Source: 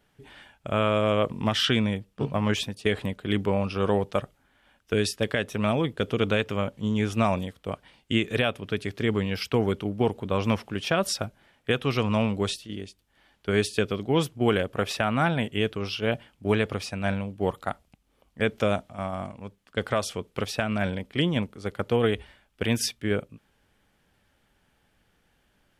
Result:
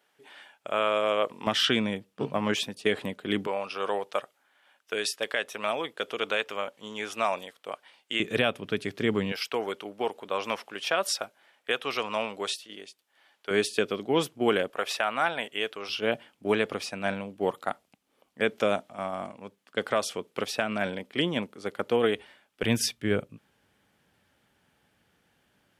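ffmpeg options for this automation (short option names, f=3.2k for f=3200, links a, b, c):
-af "asetnsamples=n=441:p=0,asendcmd='1.47 highpass f 220;3.47 highpass f 590;8.2 highpass f 160;9.32 highpass f 540;13.51 highpass f 260;14.7 highpass f 560;15.89 highpass f 250;22.63 highpass f 97',highpass=460"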